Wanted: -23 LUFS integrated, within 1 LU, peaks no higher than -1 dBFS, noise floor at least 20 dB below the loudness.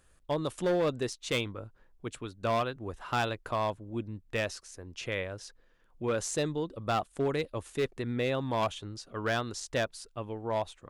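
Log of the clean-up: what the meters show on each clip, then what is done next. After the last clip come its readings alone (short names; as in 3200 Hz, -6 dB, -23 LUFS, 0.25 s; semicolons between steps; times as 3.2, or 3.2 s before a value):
clipped 1.4%; flat tops at -23.0 dBFS; loudness -33.0 LUFS; peak -23.0 dBFS; loudness target -23.0 LUFS
-> clip repair -23 dBFS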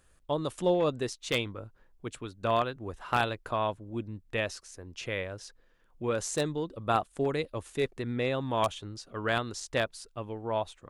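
clipped 0.0%; loudness -32.0 LUFS; peak -14.0 dBFS; loudness target -23.0 LUFS
-> gain +9 dB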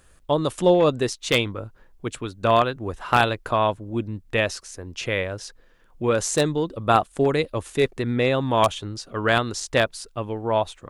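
loudness -23.0 LUFS; peak -5.0 dBFS; noise floor -55 dBFS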